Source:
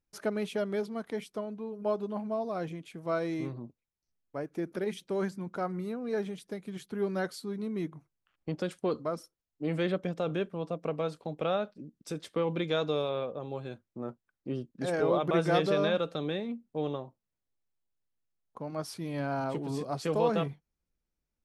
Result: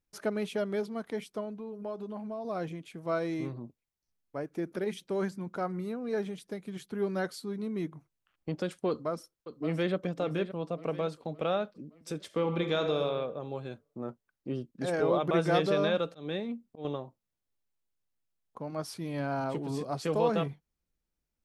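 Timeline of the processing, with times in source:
0:01.49–0:02.45: downward compressor 2.5 to 1, threshold −37 dBFS
0:08.89–0:09.94: delay throw 570 ms, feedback 50%, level −11.5 dB
0:12.25–0:13.04: thrown reverb, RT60 1.1 s, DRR 6 dB
0:16.08–0:16.85: volume swells 199 ms

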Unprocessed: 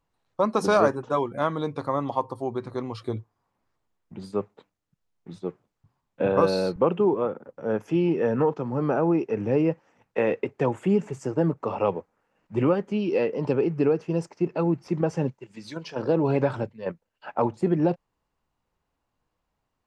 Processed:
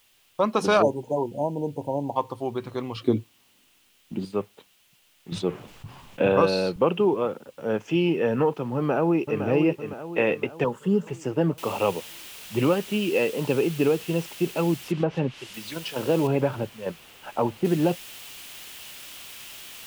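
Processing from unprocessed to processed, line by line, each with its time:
0:00.82–0:02.16: linear-phase brick-wall band-stop 990–6,000 Hz
0:02.96–0:04.25: parametric band 270 Hz +13.5 dB 1.2 octaves
0:05.32–0:06.42: envelope flattener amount 50%
0:06.97–0:08.11: low-pass with resonance 6,900 Hz, resonance Q 1.8
0:08.76–0:09.42: delay throw 510 ms, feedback 50%, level −7.5 dB
0:10.64–0:11.07: phaser with its sweep stopped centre 470 Hz, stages 8
0:11.58: noise floor change −64 dB −44 dB
0:14.84–0:15.54: treble cut that deepens with the level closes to 1,600 Hz, closed at −19 dBFS
0:16.27–0:17.65: high-shelf EQ 2,300 Hz −11 dB
whole clip: parametric band 2,900 Hz +10.5 dB 0.71 octaves

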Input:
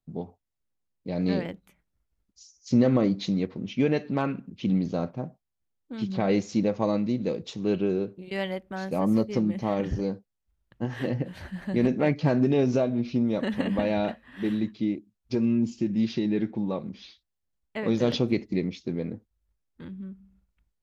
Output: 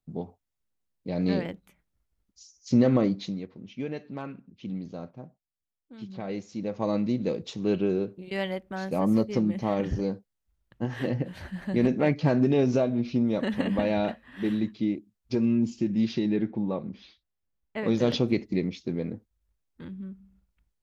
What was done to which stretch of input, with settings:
0:02.99–0:07.01: duck −10 dB, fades 0.43 s
0:16.36–0:17.78: high-shelf EQ 3,900 Hz −11.5 dB

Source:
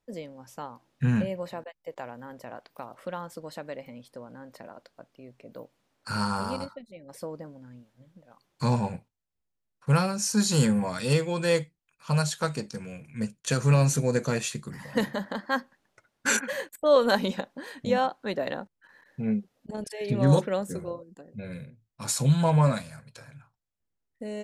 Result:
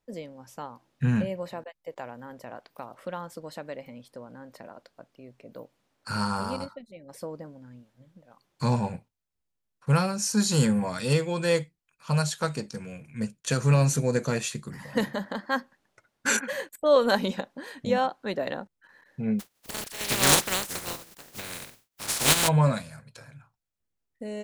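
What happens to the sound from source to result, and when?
0:19.39–0:22.47: compressing power law on the bin magnitudes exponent 0.21

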